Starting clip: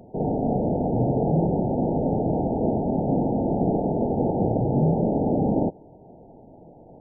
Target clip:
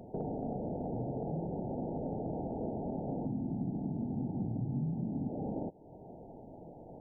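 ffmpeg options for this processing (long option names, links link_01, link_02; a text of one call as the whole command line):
ffmpeg -i in.wav -filter_complex "[0:a]asplit=3[link_01][link_02][link_03];[link_01]afade=type=out:start_time=3.25:duration=0.02[link_04];[link_02]equalizer=frequency=125:width_type=o:width=1:gain=9,equalizer=frequency=250:width_type=o:width=1:gain=9,equalizer=frequency=500:width_type=o:width=1:gain=-11,afade=type=in:start_time=3.25:duration=0.02,afade=type=out:start_time=5.28:duration=0.02[link_05];[link_03]afade=type=in:start_time=5.28:duration=0.02[link_06];[link_04][link_05][link_06]amix=inputs=3:normalize=0,acompressor=threshold=-34dB:ratio=4,volume=-2.5dB" out.wav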